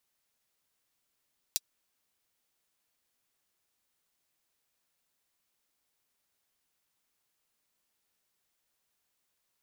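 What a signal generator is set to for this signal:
closed synth hi-hat, high-pass 4,300 Hz, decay 0.04 s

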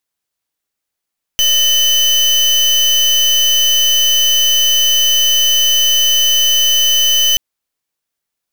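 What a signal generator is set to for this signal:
pulse wave 3,020 Hz, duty 33% −11.5 dBFS 5.98 s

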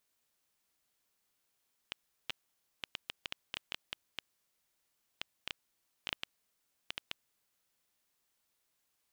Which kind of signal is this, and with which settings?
Geiger counter clicks 4.3 per second −19 dBFS 5.78 s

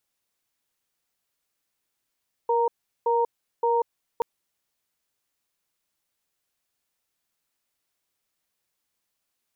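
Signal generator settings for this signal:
tone pair in a cadence 471 Hz, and 930 Hz, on 0.19 s, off 0.38 s, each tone −22 dBFS 1.73 s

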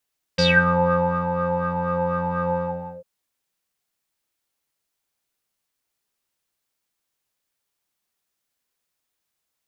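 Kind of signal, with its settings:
subtractive patch with filter wobble F3, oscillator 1 square, oscillator 2 square, interval +19 semitones, oscillator 2 level −1.5 dB, sub −8 dB, filter lowpass, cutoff 630 Hz, Q 9.3, filter envelope 3 octaves, filter decay 0.29 s, filter sustain 25%, attack 13 ms, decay 0.90 s, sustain −7 dB, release 0.52 s, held 2.13 s, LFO 4.1 Hz, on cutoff 0.2 octaves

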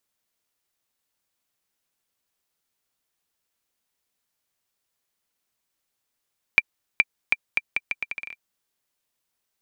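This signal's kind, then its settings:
bouncing ball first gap 0.42 s, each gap 0.77, 2,360 Hz, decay 38 ms −2 dBFS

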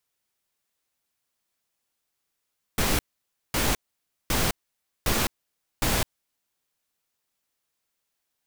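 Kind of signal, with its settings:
noise bursts pink, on 0.21 s, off 0.55 s, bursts 5, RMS −23.5 dBFS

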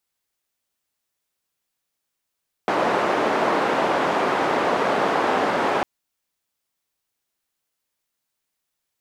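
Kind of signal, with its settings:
band-limited noise 310–910 Hz, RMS −21 dBFS 3.15 s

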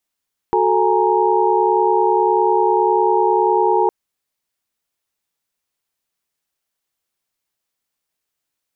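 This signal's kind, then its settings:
held notes F#4/A4/G#5/A#5 sine, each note −18 dBFS 3.36 s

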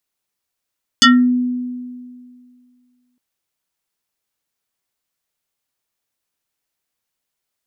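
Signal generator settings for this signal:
two-operator FM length 2.16 s, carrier 248 Hz, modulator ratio 6.48, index 4.3, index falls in 0.27 s exponential, decay 2.16 s, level −4.5 dB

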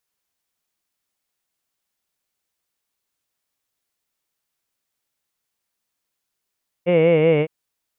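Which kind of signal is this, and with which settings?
vowel from formants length 0.61 s, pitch 171 Hz, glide −2 semitones, F1 500 Hz, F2 2,200 Hz, F3 2,800 Hz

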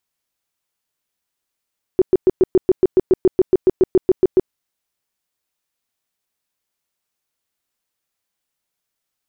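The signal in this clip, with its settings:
tone bursts 372 Hz, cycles 10, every 0.14 s, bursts 18, −7.5 dBFS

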